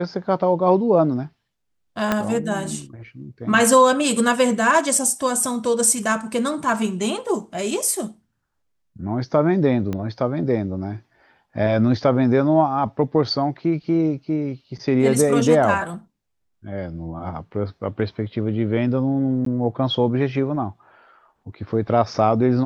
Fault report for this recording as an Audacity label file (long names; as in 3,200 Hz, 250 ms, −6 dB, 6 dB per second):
2.120000	2.120000	click −6 dBFS
9.930000	9.930000	click −15 dBFS
19.450000	19.460000	drop-out 13 ms